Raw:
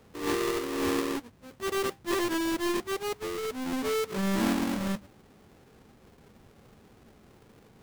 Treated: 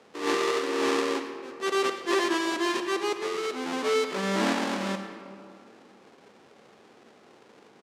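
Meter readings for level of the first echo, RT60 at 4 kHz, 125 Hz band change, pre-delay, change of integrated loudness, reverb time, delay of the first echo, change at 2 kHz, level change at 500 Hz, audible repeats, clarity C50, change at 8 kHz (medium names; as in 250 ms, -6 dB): -17.5 dB, 1.3 s, -3.0 dB, 39 ms, +2.5 dB, 2.3 s, 104 ms, +5.0 dB, +4.0 dB, 1, 7.5 dB, +1.0 dB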